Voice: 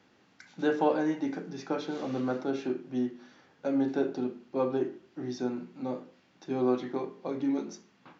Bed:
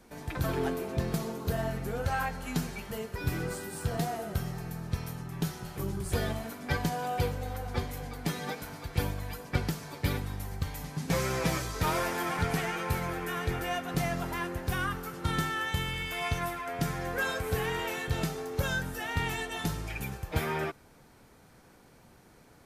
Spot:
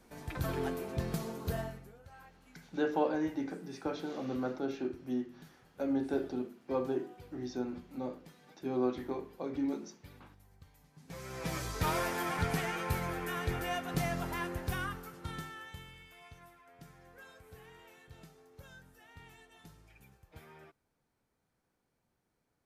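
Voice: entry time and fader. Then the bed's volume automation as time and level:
2.15 s, -4.5 dB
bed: 1.58 s -4.5 dB
1.99 s -24.5 dB
10.91 s -24.5 dB
11.67 s -3 dB
14.61 s -3 dB
16.3 s -23.5 dB

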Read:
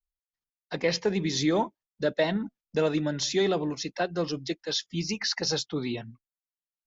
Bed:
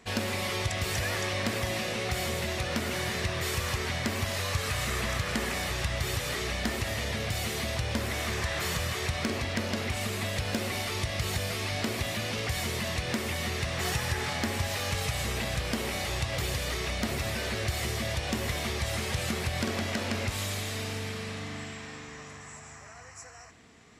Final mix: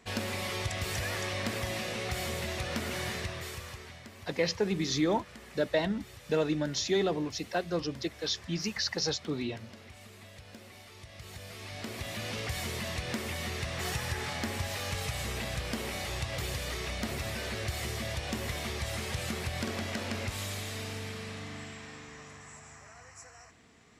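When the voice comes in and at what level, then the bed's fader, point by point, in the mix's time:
3.55 s, -3.0 dB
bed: 3.1 s -3.5 dB
4.09 s -19 dB
10.97 s -19 dB
12.29 s -4 dB

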